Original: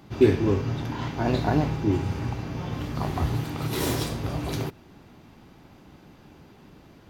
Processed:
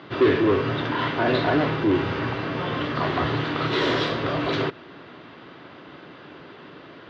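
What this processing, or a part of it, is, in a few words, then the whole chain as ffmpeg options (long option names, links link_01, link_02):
overdrive pedal into a guitar cabinet: -filter_complex "[0:a]asplit=2[link_01][link_02];[link_02]highpass=frequency=720:poles=1,volume=26dB,asoftclip=type=tanh:threshold=-5dB[link_03];[link_01][link_03]amix=inputs=2:normalize=0,lowpass=frequency=4300:poles=1,volume=-6dB,highpass=96,equalizer=frequency=210:width_type=q:width=4:gain=-7,equalizer=frequency=820:width_type=q:width=4:gain=-10,equalizer=frequency=2400:width_type=q:width=4:gain=-6,lowpass=frequency=3700:width=0.5412,lowpass=frequency=3700:width=1.3066,volume=-3.5dB"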